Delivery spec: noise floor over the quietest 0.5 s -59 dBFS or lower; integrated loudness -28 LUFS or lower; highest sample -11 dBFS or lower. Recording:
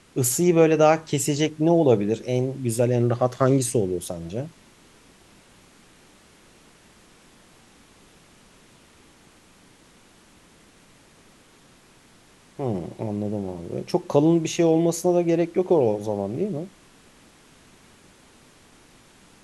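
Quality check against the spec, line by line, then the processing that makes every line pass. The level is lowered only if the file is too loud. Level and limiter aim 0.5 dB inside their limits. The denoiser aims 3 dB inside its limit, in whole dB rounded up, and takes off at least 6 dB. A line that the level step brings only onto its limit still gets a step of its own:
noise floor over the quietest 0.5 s -54 dBFS: fail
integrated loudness -22.5 LUFS: fail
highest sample -4.5 dBFS: fail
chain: gain -6 dB; limiter -11.5 dBFS

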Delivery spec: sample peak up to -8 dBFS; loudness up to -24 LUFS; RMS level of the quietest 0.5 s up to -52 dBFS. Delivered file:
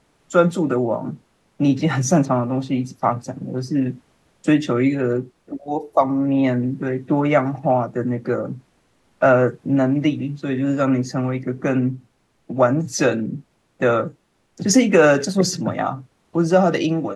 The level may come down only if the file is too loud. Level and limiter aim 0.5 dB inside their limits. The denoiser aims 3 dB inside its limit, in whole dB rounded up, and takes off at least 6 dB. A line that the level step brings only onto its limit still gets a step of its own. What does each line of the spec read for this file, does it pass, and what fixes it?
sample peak -3.5 dBFS: fail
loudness -20.0 LUFS: fail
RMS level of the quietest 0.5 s -61 dBFS: OK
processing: gain -4.5 dB; limiter -8.5 dBFS

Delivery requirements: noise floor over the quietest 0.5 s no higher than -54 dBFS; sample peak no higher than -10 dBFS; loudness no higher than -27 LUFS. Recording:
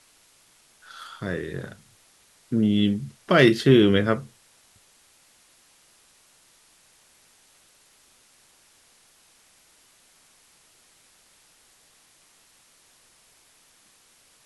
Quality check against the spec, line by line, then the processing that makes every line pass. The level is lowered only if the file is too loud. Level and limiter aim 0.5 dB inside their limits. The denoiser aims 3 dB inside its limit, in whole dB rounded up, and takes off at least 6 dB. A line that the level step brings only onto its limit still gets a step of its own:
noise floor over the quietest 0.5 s -59 dBFS: OK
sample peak -4.5 dBFS: fail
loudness -21.5 LUFS: fail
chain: gain -6 dB

